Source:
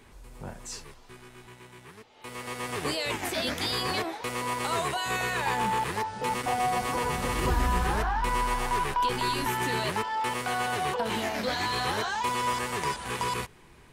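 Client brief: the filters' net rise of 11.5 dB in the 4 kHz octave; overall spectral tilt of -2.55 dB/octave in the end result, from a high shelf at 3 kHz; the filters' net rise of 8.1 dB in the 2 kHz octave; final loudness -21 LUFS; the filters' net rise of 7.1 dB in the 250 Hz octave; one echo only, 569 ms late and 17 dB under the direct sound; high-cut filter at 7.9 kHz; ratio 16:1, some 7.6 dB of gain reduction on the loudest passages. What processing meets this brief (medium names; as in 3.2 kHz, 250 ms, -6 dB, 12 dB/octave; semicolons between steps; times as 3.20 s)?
low-pass 7.9 kHz; peaking EQ 250 Hz +8.5 dB; peaking EQ 2 kHz +5.5 dB; treble shelf 3 kHz +7 dB; peaking EQ 4 kHz +7.5 dB; compression 16:1, threshold -25 dBFS; delay 569 ms -17 dB; trim +7.5 dB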